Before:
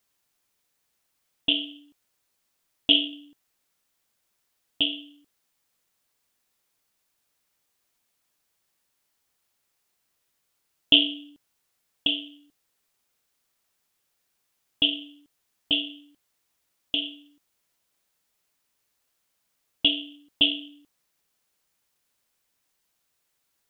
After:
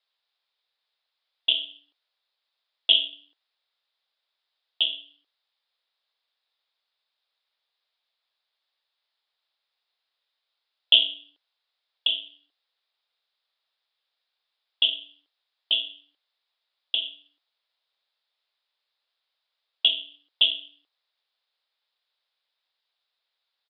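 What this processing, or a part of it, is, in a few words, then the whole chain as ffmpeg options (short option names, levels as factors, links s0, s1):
musical greeting card: -af "aresample=11025,aresample=44100,highpass=f=510:w=0.5412,highpass=f=510:w=1.3066,equalizer=f=3700:t=o:w=0.44:g=10.5,volume=0.596"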